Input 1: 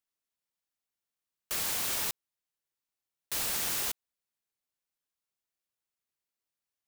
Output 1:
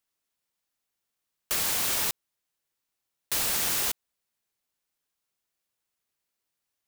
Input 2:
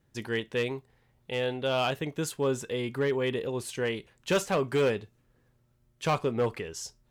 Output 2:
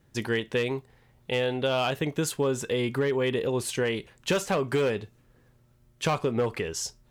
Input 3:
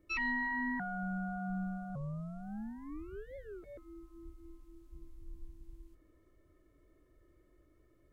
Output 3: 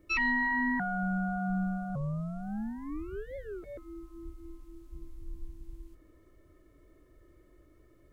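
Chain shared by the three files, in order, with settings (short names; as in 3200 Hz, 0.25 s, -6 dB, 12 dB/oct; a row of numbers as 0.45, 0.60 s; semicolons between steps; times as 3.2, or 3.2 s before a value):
compressor, threshold -29 dBFS; gain +6.5 dB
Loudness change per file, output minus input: +5.0, +2.0, +6.5 LU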